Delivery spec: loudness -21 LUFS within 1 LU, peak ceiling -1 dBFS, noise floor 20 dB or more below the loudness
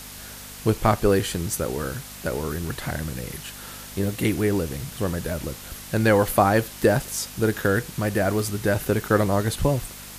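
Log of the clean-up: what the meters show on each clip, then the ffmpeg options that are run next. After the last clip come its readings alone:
hum 50 Hz; highest harmonic 250 Hz; hum level -43 dBFS; noise floor -40 dBFS; noise floor target -44 dBFS; loudness -24.0 LUFS; peak level -5.0 dBFS; loudness target -21.0 LUFS
-> -af "bandreject=f=50:t=h:w=4,bandreject=f=100:t=h:w=4,bandreject=f=150:t=h:w=4,bandreject=f=200:t=h:w=4,bandreject=f=250:t=h:w=4"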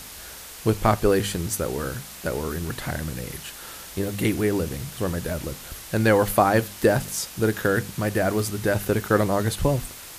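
hum not found; noise floor -41 dBFS; noise floor target -45 dBFS
-> -af "afftdn=nr=6:nf=-41"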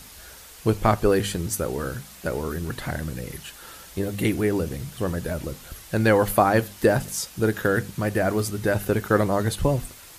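noise floor -45 dBFS; loudness -24.5 LUFS; peak level -5.0 dBFS; loudness target -21.0 LUFS
-> -af "volume=1.5"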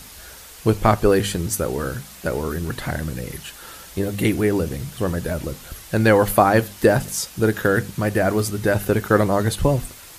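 loudness -21.0 LUFS; peak level -1.5 dBFS; noise floor -42 dBFS

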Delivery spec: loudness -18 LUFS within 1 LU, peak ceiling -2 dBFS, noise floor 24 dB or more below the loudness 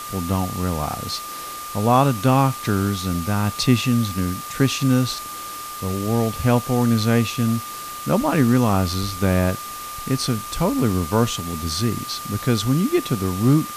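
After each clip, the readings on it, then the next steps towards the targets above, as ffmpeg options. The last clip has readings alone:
steady tone 1.2 kHz; tone level -32 dBFS; noise floor -33 dBFS; noise floor target -46 dBFS; loudness -21.5 LUFS; peak level -4.5 dBFS; loudness target -18.0 LUFS
-> -af "bandreject=f=1200:w=30"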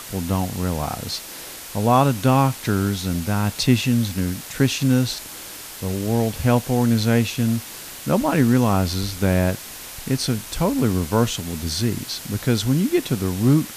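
steady tone not found; noise floor -37 dBFS; noise floor target -46 dBFS
-> -af "afftdn=nr=9:nf=-37"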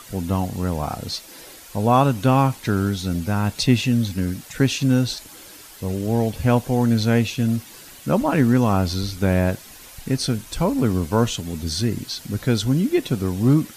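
noise floor -43 dBFS; noise floor target -46 dBFS
-> -af "afftdn=nr=6:nf=-43"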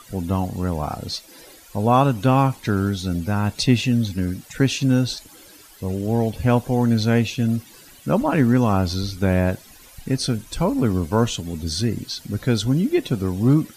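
noise floor -47 dBFS; loudness -21.5 LUFS; peak level -4.0 dBFS; loudness target -18.0 LUFS
-> -af "volume=1.5,alimiter=limit=0.794:level=0:latency=1"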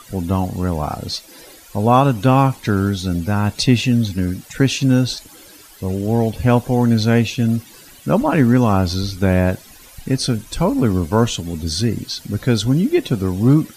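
loudness -18.0 LUFS; peak level -2.0 dBFS; noise floor -43 dBFS

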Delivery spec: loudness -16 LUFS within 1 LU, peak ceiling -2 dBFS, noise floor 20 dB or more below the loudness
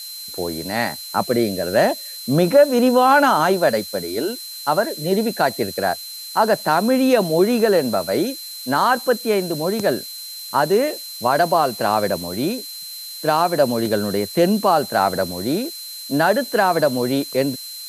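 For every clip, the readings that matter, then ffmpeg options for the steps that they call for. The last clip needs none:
steady tone 4.1 kHz; tone level -33 dBFS; noise floor -34 dBFS; noise floor target -39 dBFS; loudness -19.0 LUFS; peak level -3.5 dBFS; loudness target -16.0 LUFS
-> -af "bandreject=f=4100:w=30"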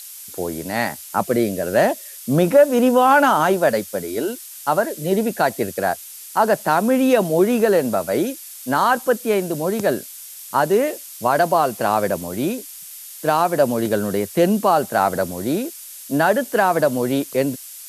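steady tone not found; noise floor -38 dBFS; noise floor target -40 dBFS
-> -af "afftdn=nr=6:nf=-38"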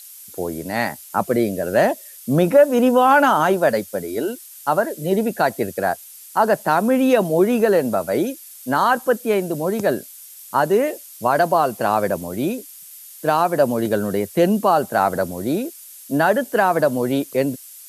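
noise floor -41 dBFS; loudness -19.5 LUFS; peak level -3.5 dBFS; loudness target -16.0 LUFS
-> -af "volume=1.5,alimiter=limit=0.794:level=0:latency=1"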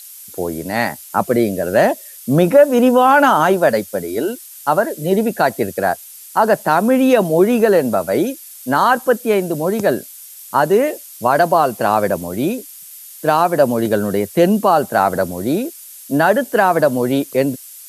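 loudness -16.0 LUFS; peak level -2.0 dBFS; noise floor -38 dBFS

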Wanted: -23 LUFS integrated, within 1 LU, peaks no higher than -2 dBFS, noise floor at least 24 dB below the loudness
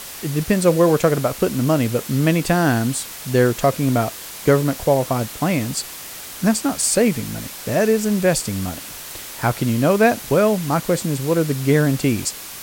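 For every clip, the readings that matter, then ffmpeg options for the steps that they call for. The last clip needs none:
noise floor -35 dBFS; noise floor target -43 dBFS; loudness -19.0 LUFS; peak level -2.5 dBFS; loudness target -23.0 LUFS
-> -af "afftdn=nr=8:nf=-35"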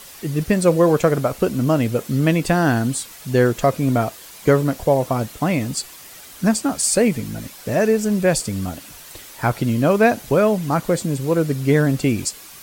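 noise floor -41 dBFS; noise floor target -44 dBFS
-> -af "afftdn=nr=6:nf=-41"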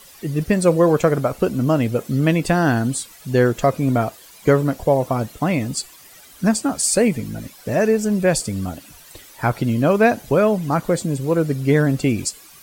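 noise floor -45 dBFS; loudness -19.5 LUFS; peak level -3.0 dBFS; loudness target -23.0 LUFS
-> -af "volume=0.668"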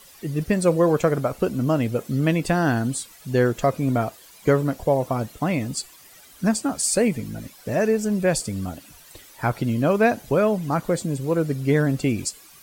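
loudness -23.0 LUFS; peak level -6.5 dBFS; noise floor -49 dBFS

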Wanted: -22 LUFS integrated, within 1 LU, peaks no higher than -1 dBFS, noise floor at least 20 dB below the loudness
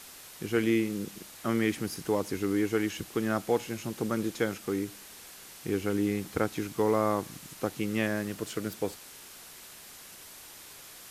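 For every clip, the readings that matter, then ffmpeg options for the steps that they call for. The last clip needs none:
noise floor -49 dBFS; noise floor target -51 dBFS; loudness -31.0 LUFS; peak level -12.0 dBFS; loudness target -22.0 LUFS
-> -af "afftdn=nr=6:nf=-49"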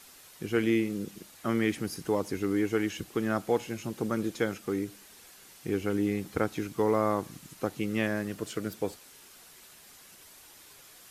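noise floor -54 dBFS; loudness -31.0 LUFS; peak level -12.0 dBFS; loudness target -22.0 LUFS
-> -af "volume=2.82"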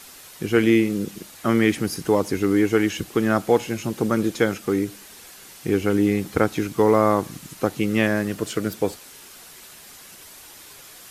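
loudness -22.0 LUFS; peak level -3.0 dBFS; noise floor -45 dBFS

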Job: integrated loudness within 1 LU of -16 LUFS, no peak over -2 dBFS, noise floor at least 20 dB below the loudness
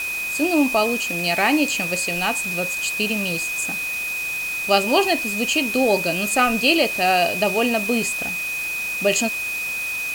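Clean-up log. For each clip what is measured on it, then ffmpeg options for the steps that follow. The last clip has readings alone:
steady tone 2.5 kHz; tone level -24 dBFS; noise floor -27 dBFS; noise floor target -40 dBFS; loudness -20.0 LUFS; peak level -4.0 dBFS; loudness target -16.0 LUFS
-> -af "bandreject=f=2500:w=30"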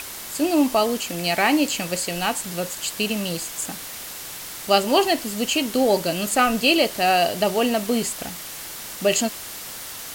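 steady tone not found; noise floor -35 dBFS; noise floor target -42 dBFS
-> -af "afftdn=nr=7:nf=-35"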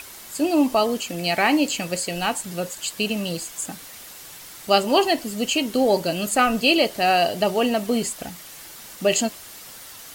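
noise floor -41 dBFS; noise floor target -42 dBFS
-> -af "afftdn=nr=6:nf=-41"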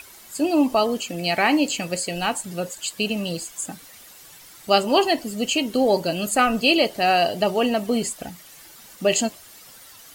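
noise floor -46 dBFS; loudness -22.0 LUFS; peak level -5.0 dBFS; loudness target -16.0 LUFS
-> -af "volume=2,alimiter=limit=0.794:level=0:latency=1"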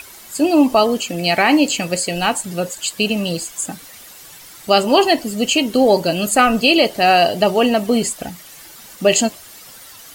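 loudness -16.0 LUFS; peak level -2.0 dBFS; noise floor -40 dBFS

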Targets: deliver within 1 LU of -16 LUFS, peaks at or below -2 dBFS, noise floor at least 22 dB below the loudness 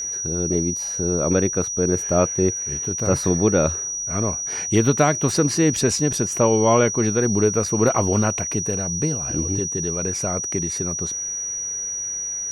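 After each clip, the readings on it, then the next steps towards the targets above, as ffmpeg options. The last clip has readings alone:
steady tone 5.8 kHz; tone level -25 dBFS; loudness -20.5 LUFS; peak level -5.5 dBFS; loudness target -16.0 LUFS
-> -af "bandreject=f=5800:w=30"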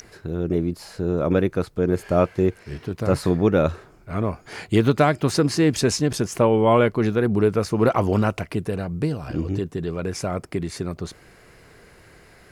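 steady tone not found; loudness -22.5 LUFS; peak level -6.0 dBFS; loudness target -16.0 LUFS
-> -af "volume=2.11,alimiter=limit=0.794:level=0:latency=1"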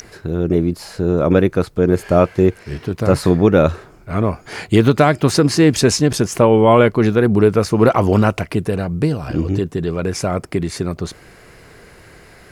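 loudness -16.0 LUFS; peak level -2.0 dBFS; noise floor -44 dBFS

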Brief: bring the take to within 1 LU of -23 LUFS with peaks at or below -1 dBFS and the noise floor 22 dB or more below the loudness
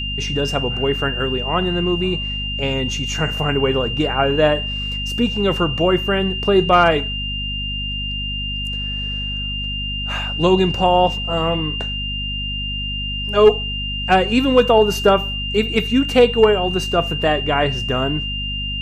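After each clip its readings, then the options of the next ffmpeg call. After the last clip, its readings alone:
hum 50 Hz; highest harmonic 250 Hz; hum level -25 dBFS; steady tone 2.8 kHz; tone level -24 dBFS; loudness -18.5 LUFS; peak level -2.5 dBFS; loudness target -23.0 LUFS
-> -af "bandreject=f=50:t=h:w=4,bandreject=f=100:t=h:w=4,bandreject=f=150:t=h:w=4,bandreject=f=200:t=h:w=4,bandreject=f=250:t=h:w=4"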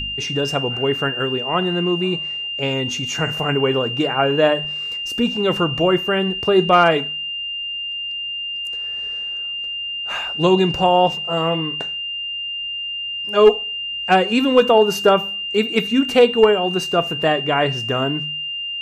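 hum not found; steady tone 2.8 kHz; tone level -24 dBFS
-> -af "bandreject=f=2800:w=30"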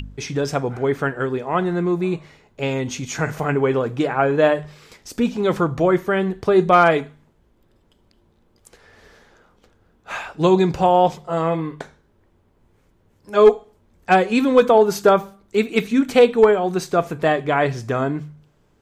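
steady tone not found; loudness -19.0 LUFS; peak level -3.0 dBFS; loudness target -23.0 LUFS
-> -af "volume=0.631"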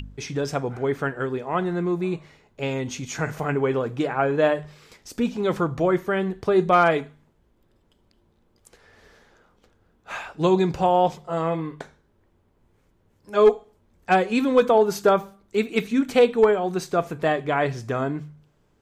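loudness -23.0 LUFS; peak level -7.0 dBFS; noise floor -64 dBFS

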